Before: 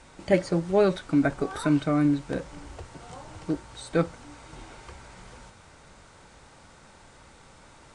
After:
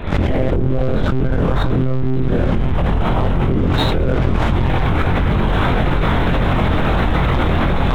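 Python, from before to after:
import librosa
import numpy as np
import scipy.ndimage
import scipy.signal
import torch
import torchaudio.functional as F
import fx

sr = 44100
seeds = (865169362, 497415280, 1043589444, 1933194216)

p1 = fx.cycle_switch(x, sr, every=3, mode='muted')
p2 = fx.recorder_agc(p1, sr, target_db=-12.5, rise_db_per_s=33.0, max_gain_db=30)
p3 = p2 + fx.echo_feedback(p2, sr, ms=65, feedback_pct=40, wet_db=-6, dry=0)
p4 = fx.lpc_monotone(p3, sr, seeds[0], pitch_hz=130.0, order=10)
p5 = fx.doubler(p4, sr, ms=23.0, db=-3.5)
p6 = fx.leveller(p5, sr, passes=2)
p7 = fx.low_shelf(p6, sr, hz=370.0, db=11.5)
p8 = fx.env_flatten(p7, sr, amount_pct=100)
y = p8 * librosa.db_to_amplitude(-15.0)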